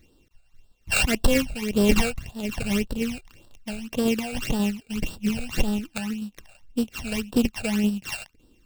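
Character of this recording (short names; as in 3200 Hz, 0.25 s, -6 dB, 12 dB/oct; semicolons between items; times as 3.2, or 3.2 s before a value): a buzz of ramps at a fixed pitch in blocks of 16 samples; tremolo saw down 3.7 Hz, depth 35%; aliases and images of a low sample rate 11000 Hz, jitter 20%; phasing stages 12, 1.8 Hz, lowest notch 320–2200 Hz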